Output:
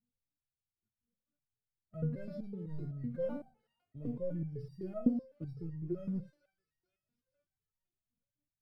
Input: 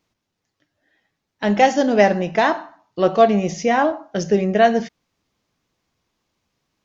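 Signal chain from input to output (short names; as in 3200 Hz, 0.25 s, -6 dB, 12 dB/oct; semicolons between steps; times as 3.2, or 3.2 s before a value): speed glide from 72% -> 87%; sample leveller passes 1; EQ curve 210 Hz 0 dB, 410 Hz -14 dB, 580 Hz -15 dB, 870 Hz -25 dB, 4500 Hz -30 dB, 8600 Hz -16 dB; in parallel at -1 dB: limiter -18.5 dBFS, peak gain reduction 9.5 dB; on the sum: bell 120 Hz +10 dB 1.3 oct; on a send: thin delay 0.453 s, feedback 49%, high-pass 1900 Hz, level -15 dB; on the sum: stepped resonator 7.9 Hz 240–940 Hz; gain -3 dB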